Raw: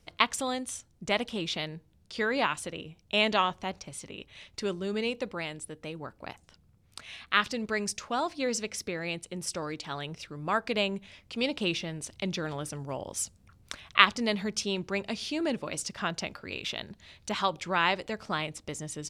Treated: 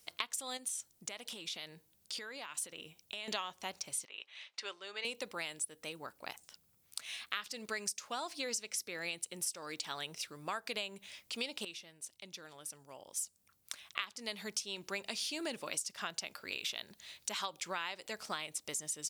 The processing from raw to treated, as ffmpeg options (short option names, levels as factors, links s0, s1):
-filter_complex "[0:a]asettb=1/sr,asplit=3[s0][s1][s2];[s0]atrim=end=0.574[s3];[s1]atrim=start=0.57:end=3.28,asetpts=PTS-STARTPTS,afade=t=in:d=0.004:c=qsin,afade=t=out:st=2.706:d=0.004:c=qsin,acompressor=threshold=0.0126:ratio=10:attack=3.2:release=140:knee=1:detection=peak[s4];[s2]atrim=start=3.276[s5];[s3][s4]acrossfade=d=0.004:c1=hsin:c2=qsin[s6];[s6][s5]acrossfade=d=0.004:c1=qsin:c2=hsin,asettb=1/sr,asplit=3[s7][s8][s9];[s7]atrim=end=4.054[s10];[s8]atrim=start=4.05:end=5.05,asetpts=PTS-STARTPTS,afade=t=in:d=0.004:c=qsin,afade=t=out:st=0.996:d=0.004:c=qsin,highpass=750,lowpass=3500[s11];[s9]atrim=start=5.046[s12];[s10][s11]acrossfade=d=0.004:c1=hsin:c2=qsin[s13];[s13][s12]acrossfade=d=0.004:c1=qsin:c2=hsin,asplit=2[s14][s15];[s14]atrim=end=11.65,asetpts=PTS-STARTPTS,afade=t=out:st=11.646:d=0.004:c=hsin:silence=0.177828[s16];[s15]atrim=start=11.65,asetpts=PTS-STARTPTS,afade=t=in:d=3.3:c=qua:silence=0.177828[s17];[s16][s17]concat=n=2:v=0:a=1,aemphasis=mode=production:type=riaa,acompressor=threshold=0.0282:ratio=8,volume=0.631"